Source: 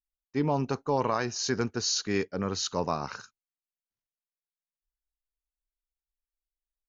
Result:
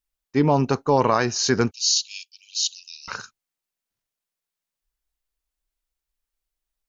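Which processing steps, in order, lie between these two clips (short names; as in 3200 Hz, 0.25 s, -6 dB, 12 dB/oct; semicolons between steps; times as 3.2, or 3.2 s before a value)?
1.71–3.08 steep high-pass 2600 Hz 96 dB/oct; gain +8.5 dB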